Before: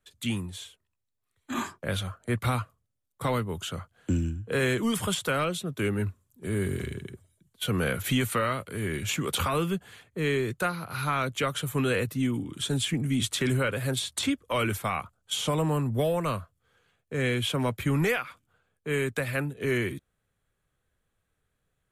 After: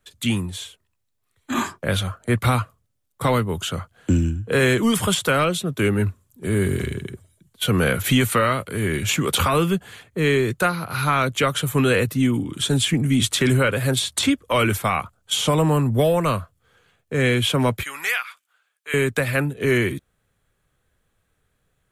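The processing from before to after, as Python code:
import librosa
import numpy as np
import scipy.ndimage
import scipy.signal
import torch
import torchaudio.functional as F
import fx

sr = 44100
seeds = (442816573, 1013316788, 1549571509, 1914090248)

y = fx.highpass(x, sr, hz=1400.0, slope=12, at=(17.83, 18.94))
y = F.gain(torch.from_numpy(y), 8.0).numpy()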